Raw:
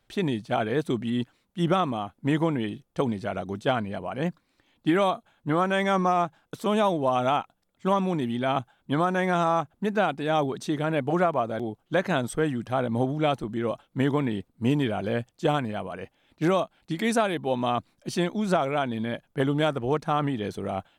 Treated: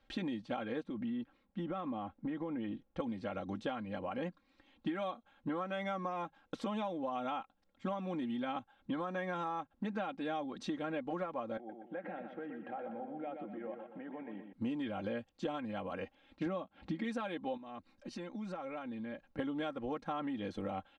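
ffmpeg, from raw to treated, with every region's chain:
ffmpeg -i in.wav -filter_complex "[0:a]asettb=1/sr,asplit=3[link_01][link_02][link_03];[link_01]atrim=end=0.834[link_04];[link_02]atrim=start=0.83:end=3,asetpts=PTS-STARTPTS,afade=type=in:duration=0.004:curve=qsin,afade=type=out:start_time=2.166:duration=0.004:curve=qsin,acompressor=threshold=-29dB:ratio=3:attack=3.2:release=140:knee=1:detection=peak,lowpass=frequency=1700:poles=1[link_05];[link_03]atrim=start=2.996[link_06];[link_04][link_05]acrossfade=duration=0.004:curve1=hsin:curve2=qsin[link_07];[link_07][link_06]acrossfade=duration=0.004:curve1=qsin:curve2=hsin,asettb=1/sr,asplit=3[link_08][link_09][link_10];[link_08]atrim=end=11.574[link_11];[link_09]atrim=start=11.57:end=14.53,asetpts=PTS-STARTPTS,afade=type=in:duration=0.004:curve=qsin,afade=type=out:start_time=2.956:duration=0.004:curve=qsin,acompressor=threshold=-37dB:ratio=12:attack=3.2:release=140:knee=1:detection=peak,highpass=frequency=180:width=0.5412,highpass=frequency=180:width=1.3066,equalizer=frequency=250:width_type=q:width=4:gain=-8,equalizer=frequency=750:width_type=q:width=4:gain=7,equalizer=frequency=1100:width_type=q:width=4:gain=-9,lowpass=frequency=2300:width=0.5412,lowpass=frequency=2300:width=1.3066,aecho=1:1:122|244|366|488|610:0.447|0.192|0.0826|0.0355|0.0153,atrim=end_sample=130536[link_12];[link_10]atrim=start=14.526[link_13];[link_11][link_12]acrossfade=duration=0.004:curve1=hsin:curve2=qsin[link_14];[link_14][link_13]acrossfade=duration=0.004:curve1=qsin:curve2=hsin,asettb=1/sr,asplit=3[link_15][link_16][link_17];[link_15]atrim=end=16.464[link_18];[link_16]atrim=start=16.46:end=17.04,asetpts=PTS-STARTPTS,afade=type=in:duration=0.004:curve=qsin,afade=type=out:start_time=0.576:duration=0.004:curve=qsin,highpass=110,aemphasis=mode=reproduction:type=bsi,acompressor=mode=upward:threshold=-37dB:ratio=2.5:attack=3.2:release=140:knee=2.83:detection=peak[link_19];[link_17]atrim=start=17.036[link_20];[link_18][link_19]acrossfade=duration=0.004:curve1=hsin:curve2=qsin[link_21];[link_21][link_20]acrossfade=duration=0.004:curve1=qsin:curve2=hsin,asettb=1/sr,asplit=3[link_22][link_23][link_24];[link_22]atrim=end=17.574[link_25];[link_23]atrim=start=17.57:end=19.39,asetpts=PTS-STARTPTS,afade=type=in:duration=0.004:curve=qsin,afade=type=out:start_time=1.816:duration=0.004:curve=qsin,bandreject=frequency=3300:width=8.9,acompressor=threshold=-43dB:ratio=3:attack=3.2:release=140:knee=1:detection=peak[link_26];[link_24]atrim=start=19.386[link_27];[link_25][link_26]acrossfade=duration=0.004:curve1=hsin:curve2=qsin[link_28];[link_28][link_27]acrossfade=duration=0.004:curve1=qsin:curve2=hsin,lowpass=4200,aecho=1:1:3.7:0.77,acompressor=threshold=-33dB:ratio=6,volume=-3dB" out.wav

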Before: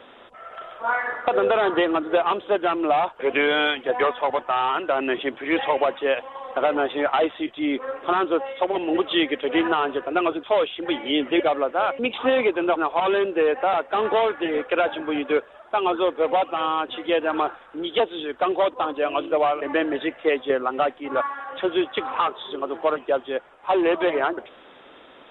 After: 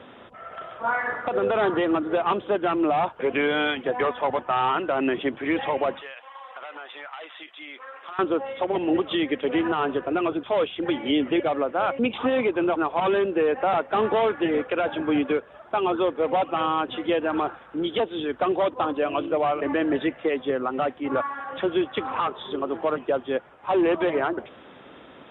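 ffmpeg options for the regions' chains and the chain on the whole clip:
ffmpeg -i in.wav -filter_complex "[0:a]asettb=1/sr,asplit=3[link_01][link_02][link_03];[link_01]atrim=end=6.014[link_04];[link_02]atrim=start=6.01:end=8.19,asetpts=PTS-STARTPTS,afade=type=in:duration=0.004:curve=qsin,afade=type=out:start_time=2.176:duration=0.004:curve=qsin,highpass=1200,acompressor=threshold=-36dB:ratio=4:attack=3.2:release=140:knee=1:detection=peak[link_05];[link_03]atrim=start=8.186[link_06];[link_04][link_05]acrossfade=duration=0.004:curve1=hsin:curve2=qsin[link_07];[link_07][link_06]acrossfade=duration=0.004:curve1=qsin:curve2=hsin,highpass=80,bass=frequency=250:gain=12,treble=frequency=4000:gain=-7,alimiter=limit=-14.5dB:level=0:latency=1:release=179" out.wav

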